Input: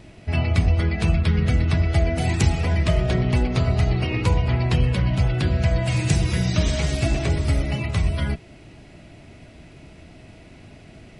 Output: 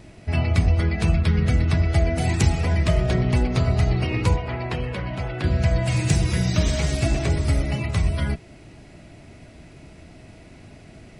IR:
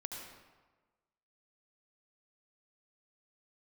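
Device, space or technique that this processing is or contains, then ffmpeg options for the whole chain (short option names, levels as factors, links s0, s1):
exciter from parts: -filter_complex "[0:a]asettb=1/sr,asplit=3[s0][s1][s2];[s0]atrim=end=4.364[s3];[s1]atrim=start=4.36:end=5.44,asetpts=PTS-STARTPTS,afade=t=in:d=0.004:c=qsin,afade=t=out:st=1.076:d=0.004:c=qsin,bass=f=250:g=-10,treble=f=4000:g=-11[s4];[s2]atrim=start=5.436[s5];[s3][s4]acrossfade=d=0.004:c1=hsin:c2=qsin[s6];[s6][s5]acrossfade=d=0.004:c1=qsin:c2=hsin,asplit=2[s7][s8];[s8]highpass=f=2800:w=0.5412,highpass=f=2800:w=1.3066,asoftclip=type=tanh:threshold=0.0251,volume=0.355[s9];[s7][s9]amix=inputs=2:normalize=0"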